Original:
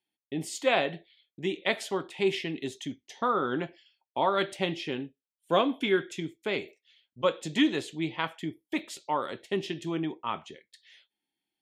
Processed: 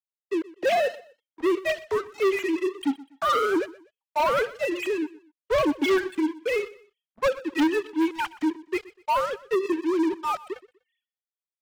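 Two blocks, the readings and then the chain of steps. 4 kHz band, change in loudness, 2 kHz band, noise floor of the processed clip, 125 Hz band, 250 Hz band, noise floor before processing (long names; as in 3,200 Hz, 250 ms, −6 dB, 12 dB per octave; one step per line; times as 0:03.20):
−1.5 dB, +4.5 dB, +3.0 dB, below −85 dBFS, −10.0 dB, +5.5 dB, below −85 dBFS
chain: three sine waves on the formant tracks
leveller curve on the samples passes 5
on a send: repeating echo 123 ms, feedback 30%, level −19.5 dB
on the sum: level −7 dB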